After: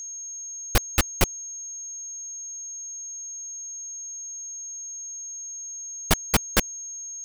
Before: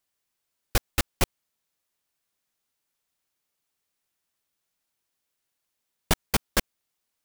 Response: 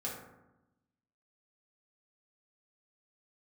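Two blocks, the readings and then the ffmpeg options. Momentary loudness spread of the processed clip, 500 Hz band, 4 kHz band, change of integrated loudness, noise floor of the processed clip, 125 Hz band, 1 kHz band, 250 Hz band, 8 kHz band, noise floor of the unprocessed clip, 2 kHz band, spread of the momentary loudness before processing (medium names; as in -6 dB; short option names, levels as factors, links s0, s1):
10 LU, +2.5 dB, +3.0 dB, -1.0 dB, -37 dBFS, +3.0 dB, +3.0 dB, +3.0 dB, +11.0 dB, -81 dBFS, +3.0 dB, 4 LU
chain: -af "aeval=exprs='val(0)+0.0112*sin(2*PI*6500*n/s)':c=same,aeval=exprs='0.447*(cos(1*acos(clip(val(0)/0.447,-1,1)))-cos(1*PI/2))+0.0501*(cos(2*acos(clip(val(0)/0.447,-1,1)))-cos(2*PI/2))+0.0794*(cos(5*acos(clip(val(0)/0.447,-1,1)))-cos(5*PI/2))+0.00316*(cos(6*acos(clip(val(0)/0.447,-1,1)))-cos(6*PI/2))+0.00891*(cos(8*acos(clip(val(0)/0.447,-1,1)))-cos(8*PI/2))':c=same"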